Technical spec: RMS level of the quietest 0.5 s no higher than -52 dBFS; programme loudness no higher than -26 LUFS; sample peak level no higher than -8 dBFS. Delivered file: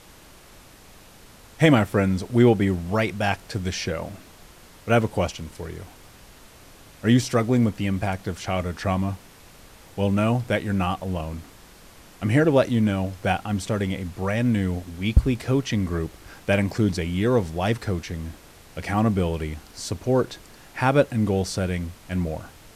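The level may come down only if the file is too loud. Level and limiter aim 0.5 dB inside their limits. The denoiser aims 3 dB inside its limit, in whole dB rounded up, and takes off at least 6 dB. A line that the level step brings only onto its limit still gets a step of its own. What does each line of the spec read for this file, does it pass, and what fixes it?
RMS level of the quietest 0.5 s -49 dBFS: fail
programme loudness -24.0 LUFS: fail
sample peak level -5.5 dBFS: fail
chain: noise reduction 6 dB, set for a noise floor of -49 dBFS; trim -2.5 dB; peak limiter -8.5 dBFS

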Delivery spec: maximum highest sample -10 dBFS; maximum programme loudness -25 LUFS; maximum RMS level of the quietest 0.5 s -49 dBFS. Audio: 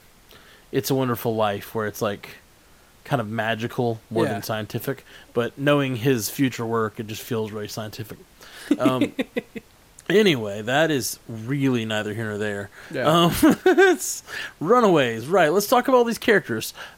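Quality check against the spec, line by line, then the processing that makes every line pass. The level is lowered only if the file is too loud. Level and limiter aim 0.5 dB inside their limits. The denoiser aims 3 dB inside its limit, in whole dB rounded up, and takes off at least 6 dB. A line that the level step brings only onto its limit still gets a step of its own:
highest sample -5.5 dBFS: fail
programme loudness -22.0 LUFS: fail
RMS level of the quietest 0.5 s -53 dBFS: pass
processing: trim -3.5 dB; peak limiter -10.5 dBFS

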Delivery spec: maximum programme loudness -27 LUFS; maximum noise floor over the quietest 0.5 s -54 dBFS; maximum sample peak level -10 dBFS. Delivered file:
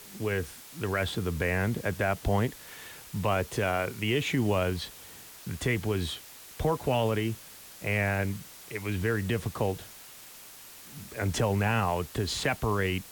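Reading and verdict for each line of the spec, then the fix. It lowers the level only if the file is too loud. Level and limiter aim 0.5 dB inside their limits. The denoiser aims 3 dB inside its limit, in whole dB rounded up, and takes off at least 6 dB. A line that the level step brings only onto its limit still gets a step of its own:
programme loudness -30.0 LUFS: pass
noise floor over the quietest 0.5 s -48 dBFS: fail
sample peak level -16.5 dBFS: pass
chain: noise reduction 9 dB, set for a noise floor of -48 dBFS

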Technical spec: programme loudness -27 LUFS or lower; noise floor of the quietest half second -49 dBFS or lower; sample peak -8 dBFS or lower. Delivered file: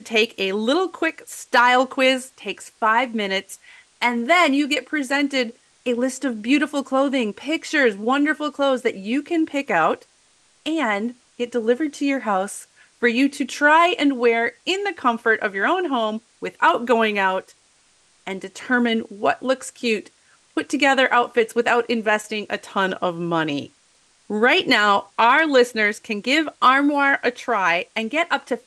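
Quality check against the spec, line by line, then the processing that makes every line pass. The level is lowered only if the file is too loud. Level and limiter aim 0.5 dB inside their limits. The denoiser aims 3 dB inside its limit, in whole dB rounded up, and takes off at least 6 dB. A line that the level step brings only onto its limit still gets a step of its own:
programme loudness -20.0 LUFS: fail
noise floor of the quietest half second -59 dBFS: pass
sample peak -5.0 dBFS: fail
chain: trim -7.5 dB

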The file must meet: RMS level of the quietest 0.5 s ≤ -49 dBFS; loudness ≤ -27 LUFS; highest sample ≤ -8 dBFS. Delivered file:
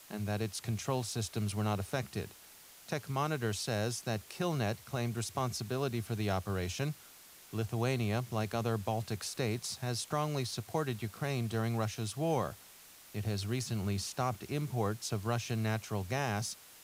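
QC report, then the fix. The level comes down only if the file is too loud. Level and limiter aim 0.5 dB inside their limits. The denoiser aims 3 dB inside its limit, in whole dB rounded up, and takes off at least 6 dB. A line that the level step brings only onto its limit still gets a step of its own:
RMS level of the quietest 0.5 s -56 dBFS: pass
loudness -35.5 LUFS: pass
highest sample -18.0 dBFS: pass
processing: none needed

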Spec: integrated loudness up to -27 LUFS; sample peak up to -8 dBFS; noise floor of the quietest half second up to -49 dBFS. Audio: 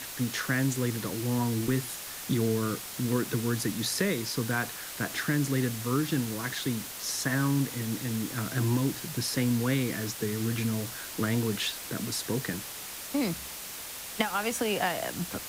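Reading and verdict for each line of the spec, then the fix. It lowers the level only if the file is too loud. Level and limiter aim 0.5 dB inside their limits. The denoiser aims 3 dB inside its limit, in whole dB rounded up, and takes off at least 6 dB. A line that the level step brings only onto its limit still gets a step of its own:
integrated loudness -30.0 LUFS: pass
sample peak -10.5 dBFS: pass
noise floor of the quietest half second -40 dBFS: fail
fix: noise reduction 12 dB, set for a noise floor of -40 dBFS

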